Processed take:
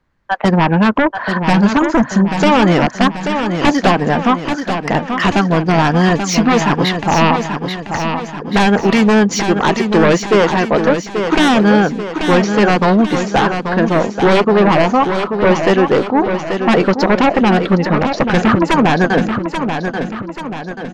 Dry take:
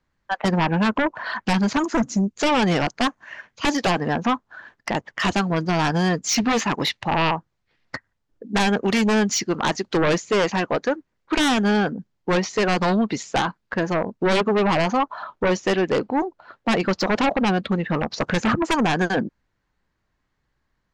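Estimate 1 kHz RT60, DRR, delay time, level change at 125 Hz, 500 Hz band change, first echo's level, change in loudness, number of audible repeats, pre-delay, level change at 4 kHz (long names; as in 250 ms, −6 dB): no reverb audible, no reverb audible, 835 ms, +9.5 dB, +9.5 dB, −7.0 dB, +8.5 dB, 5, no reverb audible, +5.0 dB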